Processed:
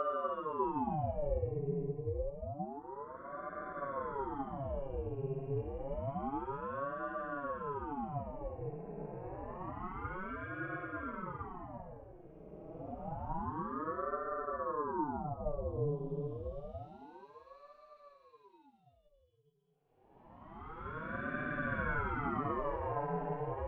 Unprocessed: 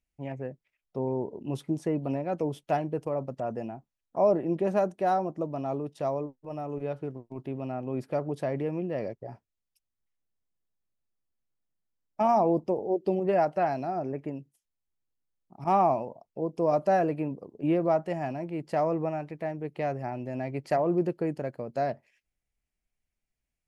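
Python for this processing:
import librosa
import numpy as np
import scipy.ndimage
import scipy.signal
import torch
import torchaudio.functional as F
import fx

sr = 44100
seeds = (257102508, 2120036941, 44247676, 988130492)

y = scipy.signal.sosfilt(scipy.signal.butter(2, 1500.0, 'lowpass', fs=sr, output='sos'), x)
y = fx.comb_fb(y, sr, f0_hz=290.0, decay_s=0.18, harmonics='odd', damping=0.0, mix_pct=80)
y = fx.paulstretch(y, sr, seeds[0], factor=27.0, window_s=0.1, from_s=1.92)
y = fx.ring_lfo(y, sr, carrier_hz=510.0, swing_pct=75, hz=0.28)
y = y * librosa.db_to_amplitude(2.5)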